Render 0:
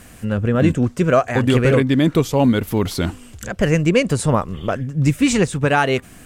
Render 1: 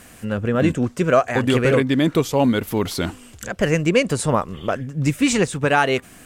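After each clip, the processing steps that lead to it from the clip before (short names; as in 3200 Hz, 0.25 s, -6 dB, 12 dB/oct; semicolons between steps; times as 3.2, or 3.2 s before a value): low shelf 170 Hz -8 dB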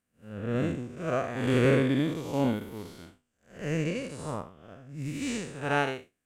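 time blur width 0.203 s; upward expander 2.5:1, over -41 dBFS; gain -2 dB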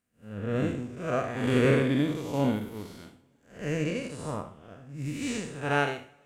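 two-slope reverb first 0.51 s, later 4.1 s, from -28 dB, DRR 8.5 dB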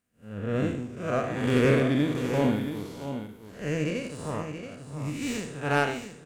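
tracing distortion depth 0.04 ms; on a send: echo 0.677 s -9 dB; on the sum: gain +1 dB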